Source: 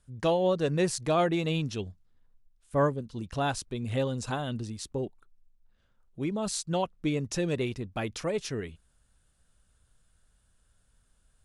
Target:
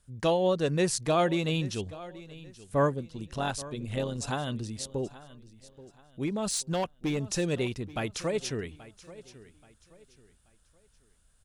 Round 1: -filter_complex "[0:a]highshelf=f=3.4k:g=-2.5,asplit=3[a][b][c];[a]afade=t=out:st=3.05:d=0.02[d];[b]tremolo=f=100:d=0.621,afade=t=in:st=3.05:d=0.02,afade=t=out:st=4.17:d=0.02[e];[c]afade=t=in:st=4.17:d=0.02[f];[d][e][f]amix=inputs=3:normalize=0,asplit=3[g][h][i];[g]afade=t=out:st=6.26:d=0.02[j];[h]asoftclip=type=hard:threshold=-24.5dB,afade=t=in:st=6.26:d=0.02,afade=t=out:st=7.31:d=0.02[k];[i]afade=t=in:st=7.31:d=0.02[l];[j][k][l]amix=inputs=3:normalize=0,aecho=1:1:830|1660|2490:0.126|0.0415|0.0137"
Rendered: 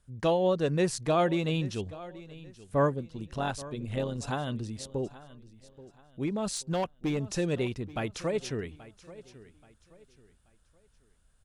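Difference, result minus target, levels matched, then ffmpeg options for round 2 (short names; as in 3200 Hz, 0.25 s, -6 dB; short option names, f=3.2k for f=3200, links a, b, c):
8000 Hz band -4.5 dB
-filter_complex "[0:a]highshelf=f=3.4k:g=4,asplit=3[a][b][c];[a]afade=t=out:st=3.05:d=0.02[d];[b]tremolo=f=100:d=0.621,afade=t=in:st=3.05:d=0.02,afade=t=out:st=4.17:d=0.02[e];[c]afade=t=in:st=4.17:d=0.02[f];[d][e][f]amix=inputs=3:normalize=0,asplit=3[g][h][i];[g]afade=t=out:st=6.26:d=0.02[j];[h]asoftclip=type=hard:threshold=-24.5dB,afade=t=in:st=6.26:d=0.02,afade=t=out:st=7.31:d=0.02[k];[i]afade=t=in:st=7.31:d=0.02[l];[j][k][l]amix=inputs=3:normalize=0,aecho=1:1:830|1660|2490:0.126|0.0415|0.0137"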